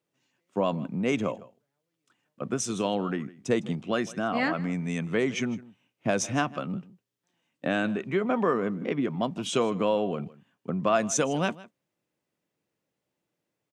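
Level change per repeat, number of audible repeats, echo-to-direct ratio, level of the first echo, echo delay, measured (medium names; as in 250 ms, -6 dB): no regular repeats, 1, -20.0 dB, -20.0 dB, 157 ms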